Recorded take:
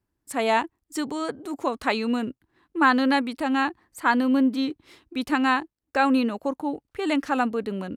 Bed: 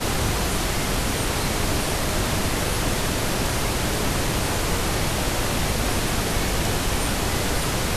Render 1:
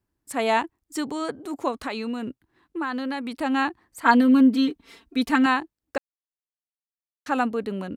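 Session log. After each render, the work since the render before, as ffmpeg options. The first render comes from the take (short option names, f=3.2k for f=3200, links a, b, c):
-filter_complex "[0:a]asettb=1/sr,asplit=3[a][b][c];[a]atrim=end=1.714[d];[b]atrim=start=1.71:end=3.31,asetpts=PTS-STARTPTS,afade=t=in:d=0.004:c=qsin,afade=t=out:st=1.596:d=0.004:c=qsin,acompressor=threshold=-26dB:ratio=4:attack=3.2:release=140:knee=1:detection=peak[e];[c]atrim=start=3.306[f];[d][e]acrossfade=d=0.004:c1=hsin:c2=qsin[g];[g][f]acrossfade=d=0.004:c1=qsin:c2=hsin,asettb=1/sr,asplit=3[h][i][j];[h]atrim=end=4.034[k];[i]atrim=start=4.03:end=5.46,asetpts=PTS-STARTPTS,afade=t=in:d=0.004:c=qsin,afade=t=out:st=1.426:d=0.004:c=qsin,aecho=1:1:4.4:0.96,atrim=end_sample=63063[l];[j]atrim=start=5.456[m];[k][l]acrossfade=d=0.004:c1=hsin:c2=qsin[n];[n][m]acrossfade=d=0.004:c1=qsin:c2=hsin,asplit=3[o][p][q];[o]atrim=end=5.98,asetpts=PTS-STARTPTS,afade=t=out:st=5.976:d=0.004:c=hsin[r];[p]atrim=start=5.98:end=7.26,asetpts=PTS-STARTPTS,volume=0[s];[q]atrim=start=7.26,asetpts=PTS-STARTPTS,afade=t=in:d=0.004:c=hsin[t];[r][s][t]concat=n=3:v=0:a=1"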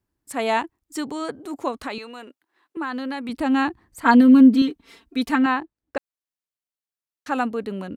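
-filter_complex "[0:a]asettb=1/sr,asplit=3[a][b][c];[a]atrim=end=1.984[d];[b]atrim=start=1.98:end=2.77,asetpts=PTS-STARTPTS,afade=t=in:d=0.004:c=qsin,afade=t=out:st=0.786:d=0.004:c=qsin,highpass=540[e];[c]atrim=start=2.766[f];[d][e]acrossfade=d=0.004:c1=hsin:c2=qsin[g];[g][f]acrossfade=d=0.004:c1=qsin:c2=hsin,asettb=1/sr,asplit=3[h][i][j];[h]atrim=end=3.294[k];[i]atrim=start=3.29:end=4.62,asetpts=PTS-STARTPTS,afade=t=in:d=0.004:c=qsin,afade=t=out:st=1.326:d=0.004:c=qsin,lowshelf=f=220:g=12[l];[j]atrim=start=4.616[m];[k][l]acrossfade=d=0.004:c1=hsin:c2=qsin[n];[n][m]acrossfade=d=0.004:c1=qsin:c2=hsin,asettb=1/sr,asplit=3[o][p][q];[o]atrim=end=5.354[r];[p]atrim=start=5.35:end=5.97,asetpts=PTS-STARTPTS,afade=t=in:d=0.004:c=qsin,afade=t=out:st=0.616:d=0.004:c=qsin,aemphasis=mode=reproduction:type=75fm[s];[q]atrim=start=5.966[t];[r][s]acrossfade=d=0.004:c1=hsin:c2=qsin[u];[u][t]acrossfade=d=0.004:c1=qsin:c2=hsin"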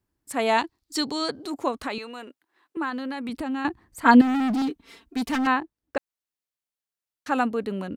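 -filter_complex "[0:a]asettb=1/sr,asplit=3[a][b][c];[a]atrim=end=0.584[d];[b]atrim=start=0.58:end=1.5,asetpts=PTS-STARTPTS,afade=t=in:d=0.004:c=qsin,afade=t=out:st=0.916:d=0.004:c=qsin,equalizer=f=4.4k:w=1.9:g=14.5[e];[c]atrim=start=1.496[f];[d][e]acrossfade=d=0.004:c1=hsin:c2=qsin[g];[g][f]acrossfade=d=0.004:c1=qsin:c2=hsin,asettb=1/sr,asplit=3[h][i][j];[h]atrim=end=2.894[k];[i]atrim=start=2.89:end=3.65,asetpts=PTS-STARTPTS,afade=t=in:d=0.004:c=qsin,afade=t=out:st=0.756:d=0.004:c=qsin,acompressor=threshold=-27dB:ratio=4:attack=3.2:release=140:knee=1:detection=peak[l];[j]atrim=start=3.646[m];[k][l]acrossfade=d=0.004:c1=hsin:c2=qsin[n];[n][m]acrossfade=d=0.004:c1=qsin:c2=hsin,asettb=1/sr,asplit=3[o][p][q];[o]atrim=end=4.214[r];[p]atrim=start=4.21:end=5.47,asetpts=PTS-STARTPTS,afade=t=in:d=0.004:c=qsin,afade=t=out:st=1.256:d=0.004:c=qsin,volume=22.5dB,asoftclip=hard,volume=-22.5dB[s];[q]atrim=start=5.466[t];[r][s]acrossfade=d=0.004:c1=hsin:c2=qsin[u];[u][t]acrossfade=d=0.004:c1=qsin:c2=hsin"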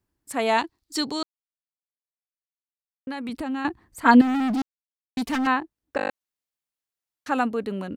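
-filter_complex "[0:a]asplit=12[a][b][c][d][e][f][g][h][i][j][k][l];[a]atrim=end=1.23,asetpts=PTS-STARTPTS,afade=t=out:st=1.226:d=0.004:c=hsin[m];[b]atrim=start=1.23:end=3.07,asetpts=PTS-STARTPTS,volume=0[n];[c]atrim=start=3.07:end=4.62,asetpts=PTS-STARTPTS,afade=t=in:d=0.004:c=hsin,afade=t=out:st=1.546:d=0.004:c=hsin[o];[d]atrim=start=4.62:end=5.17,asetpts=PTS-STARTPTS,volume=0[p];[e]atrim=start=5.17:end=5.992,asetpts=PTS-STARTPTS,afade=t=in:d=0.004:c=hsin[q];[f]atrim=start=5.968:end=5.992[r];[g]atrim=start=5.968:end=5.992[s];[h]atrim=start=5.968:end=5.992[t];[i]atrim=start=5.968:end=5.992[u];[j]atrim=start=5.968:end=5.992[v];[k]atrim=start=5.968:end=5.992[w];[l]atrim=start=6.108[x];[m][n][o][p][q]concat=n=5:v=0:a=1[y];[y][r]acrossfade=d=0.004:c1=hsin:c2=hsin[z];[z][s]acrossfade=d=0.004:c1=hsin:c2=hsin[aa];[aa][t]acrossfade=d=0.004:c1=hsin:c2=hsin[ab];[ab][u]acrossfade=d=0.004:c1=hsin:c2=hsin[ac];[ac][v]acrossfade=d=0.004:c1=hsin:c2=hsin[ad];[ad][w]acrossfade=d=0.004:c1=hsin:c2=hsin[ae];[ae][x]acrossfade=d=0.004:c1=hsin:c2=hsin"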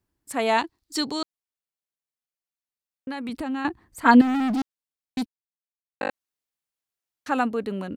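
-filter_complex "[0:a]asplit=3[a][b][c];[a]atrim=end=5.26,asetpts=PTS-STARTPTS,afade=t=out:st=5.256:d=0.004:c=hsin[d];[b]atrim=start=5.26:end=6.01,asetpts=PTS-STARTPTS,volume=0[e];[c]atrim=start=6.01,asetpts=PTS-STARTPTS,afade=t=in:d=0.004:c=hsin[f];[d][e][f]concat=n=3:v=0:a=1"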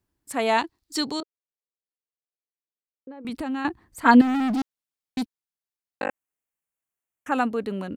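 -filter_complex "[0:a]asettb=1/sr,asplit=3[a][b][c];[a]atrim=end=1.204[d];[b]atrim=start=1.2:end=3.25,asetpts=PTS-STARTPTS,afade=t=in:d=0.004:c=qsin,afade=t=out:st=2.046:d=0.004:c=qsin,bandpass=f=440:t=q:w=2.4[e];[c]atrim=start=3.246[f];[d][e]acrossfade=d=0.004:c1=hsin:c2=qsin[g];[g][f]acrossfade=d=0.004:c1=qsin:c2=hsin,asettb=1/sr,asplit=3[h][i][j];[h]atrim=end=6.054[k];[i]atrim=start=6.05:end=7.32,asetpts=PTS-STARTPTS,afade=t=in:d=0.004:c=qsin,afade=t=out:st=1.266:d=0.004:c=qsin,asuperstop=centerf=4400:order=4:qfactor=1.2[l];[j]atrim=start=7.316[m];[k][l]acrossfade=d=0.004:c1=hsin:c2=qsin[n];[n][m]acrossfade=d=0.004:c1=qsin:c2=hsin"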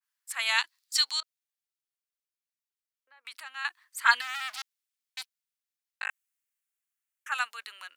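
-af "highpass=f=1.3k:w=0.5412,highpass=f=1.3k:w=1.3066,adynamicequalizer=threshold=0.01:dfrequency=2200:dqfactor=0.7:tfrequency=2200:tqfactor=0.7:attack=5:release=100:ratio=0.375:range=3:mode=boostabove:tftype=highshelf"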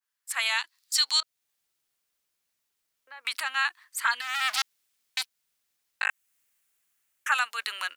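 -af "dynaudnorm=f=220:g=3:m=13.5dB,alimiter=limit=-13.5dB:level=0:latency=1:release=310"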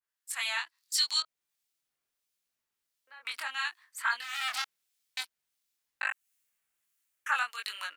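-filter_complex "[0:a]flanger=delay=19.5:depth=4.9:speed=0.77,acrossover=split=2500[a][b];[a]aeval=exprs='val(0)*(1-0.5/2+0.5/2*cos(2*PI*1.5*n/s))':c=same[c];[b]aeval=exprs='val(0)*(1-0.5/2-0.5/2*cos(2*PI*1.5*n/s))':c=same[d];[c][d]amix=inputs=2:normalize=0"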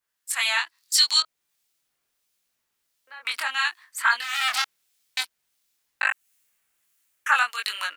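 -af "volume=9dB"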